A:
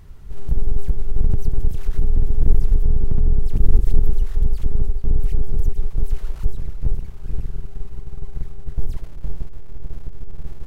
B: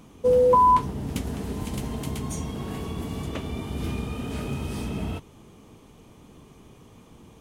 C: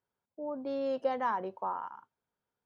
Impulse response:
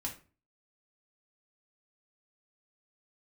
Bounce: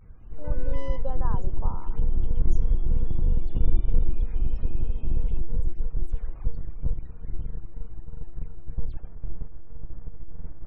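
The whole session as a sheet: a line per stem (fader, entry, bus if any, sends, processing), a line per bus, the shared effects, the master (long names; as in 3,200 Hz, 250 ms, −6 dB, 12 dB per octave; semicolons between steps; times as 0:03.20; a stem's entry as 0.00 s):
−6.5 dB, 0.00 s, no send, pitch modulation by a square or saw wave square 3.1 Hz, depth 250 cents
−10.5 dB, 0.20 s, no send, lower of the sound and its delayed copy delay 0.31 ms; downward compressor 2 to 1, threshold −31 dBFS, peak gain reduction 8.5 dB; tube saturation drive 32 dB, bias 0.2
−5.5 dB, 0.00 s, no send, parametric band 2,200 Hz −12.5 dB 0.62 octaves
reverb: not used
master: high-shelf EQ 4,700 Hz −4.5 dB; spectral peaks only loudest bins 64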